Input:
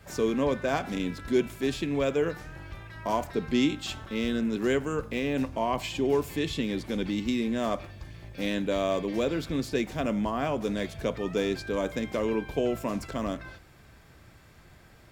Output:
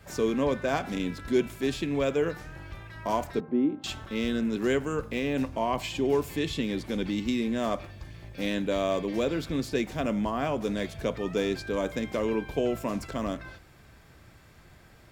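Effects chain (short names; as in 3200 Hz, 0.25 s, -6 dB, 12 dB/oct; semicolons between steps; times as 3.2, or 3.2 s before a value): 3.4–3.84 Butterworth band-pass 420 Hz, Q 0.6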